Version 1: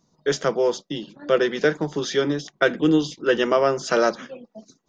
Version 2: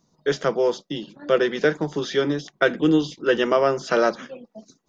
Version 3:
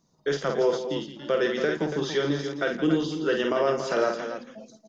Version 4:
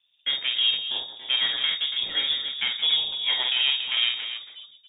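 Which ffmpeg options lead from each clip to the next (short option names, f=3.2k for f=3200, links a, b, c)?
-filter_complex "[0:a]acrossover=split=5000[a][b];[b]acompressor=threshold=-45dB:ratio=4:attack=1:release=60[c];[a][c]amix=inputs=2:normalize=0"
-filter_complex "[0:a]alimiter=limit=-11.5dB:level=0:latency=1:release=91,asplit=2[a][b];[b]aecho=0:1:49.56|169.1|282.8:0.562|0.282|0.355[c];[a][c]amix=inputs=2:normalize=0,volume=-3.5dB"
-af "aeval=exprs='if(lt(val(0),0),0.447*val(0),val(0))':c=same,lowpass=f=3.1k:t=q:w=0.5098,lowpass=f=3.1k:t=q:w=0.6013,lowpass=f=3.1k:t=q:w=0.9,lowpass=f=3.1k:t=q:w=2.563,afreqshift=-3700,volume=2dB"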